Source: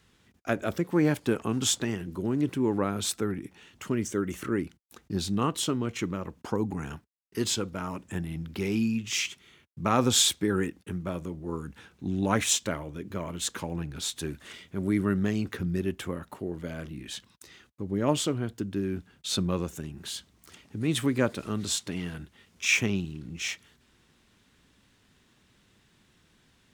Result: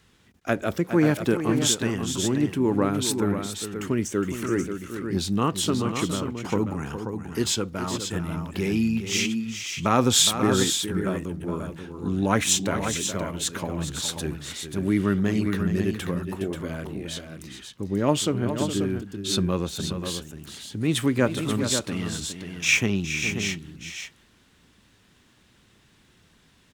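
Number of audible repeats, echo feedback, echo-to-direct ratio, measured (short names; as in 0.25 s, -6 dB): 2, no steady repeat, -5.5 dB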